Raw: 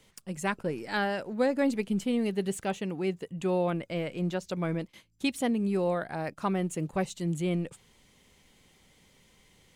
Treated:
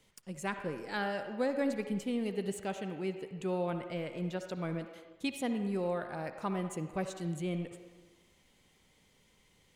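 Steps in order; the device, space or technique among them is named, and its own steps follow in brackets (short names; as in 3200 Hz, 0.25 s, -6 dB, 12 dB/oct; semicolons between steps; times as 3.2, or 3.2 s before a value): filtered reverb send (on a send: HPF 350 Hz 12 dB/oct + LPF 3900 Hz 12 dB/oct + reverb RT60 1.3 s, pre-delay 53 ms, DRR 7 dB); on the sum: gain -6 dB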